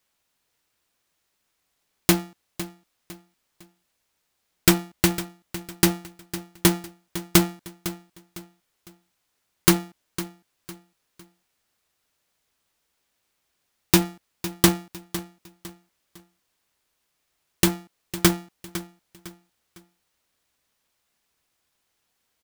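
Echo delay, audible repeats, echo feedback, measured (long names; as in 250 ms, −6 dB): 505 ms, 3, 34%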